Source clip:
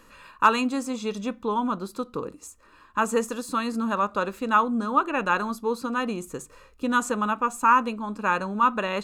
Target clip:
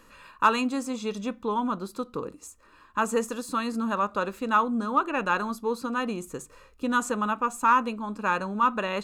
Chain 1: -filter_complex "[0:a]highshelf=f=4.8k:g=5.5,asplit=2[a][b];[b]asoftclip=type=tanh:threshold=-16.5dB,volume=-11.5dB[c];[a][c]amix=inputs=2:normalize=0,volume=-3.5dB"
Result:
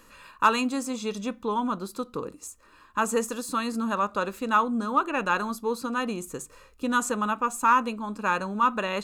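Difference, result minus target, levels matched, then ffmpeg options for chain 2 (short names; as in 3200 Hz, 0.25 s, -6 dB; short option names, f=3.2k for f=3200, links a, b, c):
8000 Hz band +3.5 dB
-filter_complex "[0:a]asplit=2[a][b];[b]asoftclip=type=tanh:threshold=-16.5dB,volume=-11.5dB[c];[a][c]amix=inputs=2:normalize=0,volume=-3.5dB"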